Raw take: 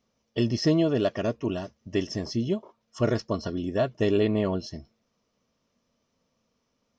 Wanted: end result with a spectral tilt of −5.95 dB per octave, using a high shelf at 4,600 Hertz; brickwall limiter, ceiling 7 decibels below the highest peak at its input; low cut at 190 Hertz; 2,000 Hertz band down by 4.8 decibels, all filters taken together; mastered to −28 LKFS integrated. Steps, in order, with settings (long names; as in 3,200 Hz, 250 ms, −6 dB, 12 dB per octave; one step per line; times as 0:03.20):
high-pass filter 190 Hz
parametric band 2,000 Hz −5 dB
high-shelf EQ 4,600 Hz −6.5 dB
level +3.5 dB
brickwall limiter −16 dBFS